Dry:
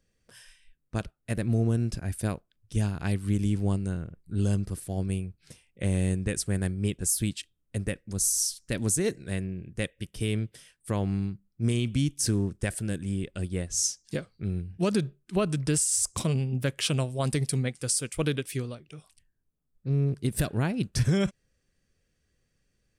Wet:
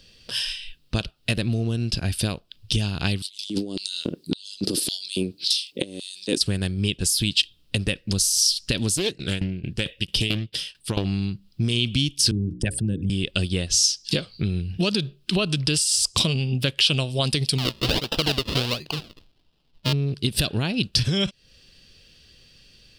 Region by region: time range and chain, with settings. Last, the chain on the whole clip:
3.22–6.41 s: high-order bell 1.5 kHz -8.5 dB 2.3 oct + compressor with a negative ratio -33 dBFS, ratio -0.5 + LFO high-pass square 1.8 Hz 290–3800 Hz
8.97–11.05 s: tremolo saw down 4.5 Hz, depth 90% + loudspeaker Doppler distortion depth 0.59 ms
12.31–13.10 s: resonances exaggerated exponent 2 + hum notches 60/120/180/240/300/360/420/480/540 Hz + three bands compressed up and down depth 40%
17.58–19.93 s: bass shelf 400 Hz -4 dB + decimation with a swept rate 39× 1.4 Hz
whole clip: compression 6:1, threshold -38 dBFS; high-order bell 3.7 kHz +15 dB 1.2 oct; loudness maximiser +22.5 dB; trim -6.5 dB

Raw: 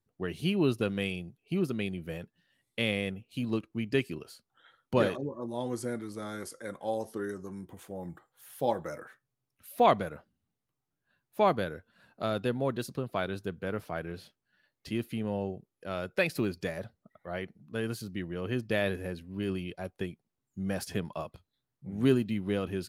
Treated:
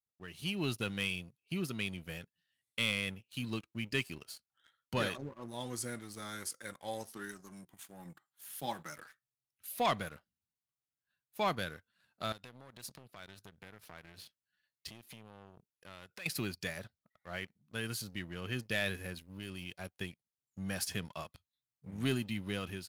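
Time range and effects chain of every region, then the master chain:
7.09–8.98 s: high-pass 120 Hz 24 dB/octave + peaking EQ 500 Hz -10.5 dB 0.44 oct
12.32–16.26 s: compression, threshold -39 dBFS + transformer saturation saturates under 680 Hz
19.14–19.77 s: treble shelf 9.5 kHz +6 dB + compression 2:1, threshold -37 dBFS
whole clip: amplifier tone stack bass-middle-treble 5-5-5; waveshaping leveller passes 2; level rider gain up to 9 dB; trim -6 dB

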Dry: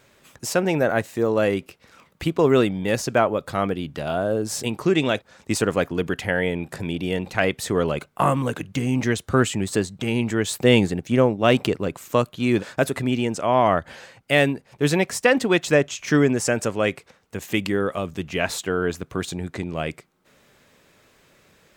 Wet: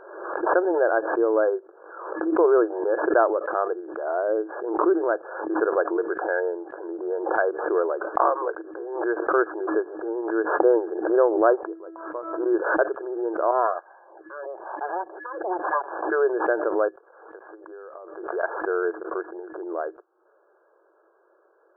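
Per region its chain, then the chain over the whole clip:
11.65–12.46 s: bass shelf 160 Hz -10.5 dB + feedback comb 330 Hz, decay 0.24 s, mix 80%
13.51–16.10 s: comb filter that takes the minimum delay 1.1 ms + lamp-driven phase shifter 1 Hz
16.88–18.43 s: high-pass 400 Hz + compression 10:1, threshold -35 dBFS
whole clip: local Wiener filter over 15 samples; FFT band-pass 320–1700 Hz; swell ahead of each attack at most 54 dB/s

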